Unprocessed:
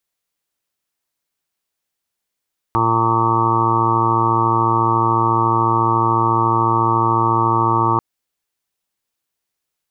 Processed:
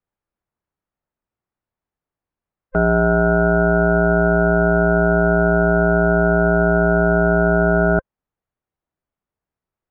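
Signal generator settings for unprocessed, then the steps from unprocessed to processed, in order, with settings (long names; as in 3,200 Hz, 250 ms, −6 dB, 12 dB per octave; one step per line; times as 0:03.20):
steady harmonic partials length 5.24 s, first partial 114 Hz, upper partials −8/−0.5/−9/−18/−15/−7/3/−4.5/3/−7 dB, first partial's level −21 dB
frequency inversion band by band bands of 500 Hz
low-pass filter 1,300 Hz 12 dB per octave
low-shelf EQ 140 Hz +9.5 dB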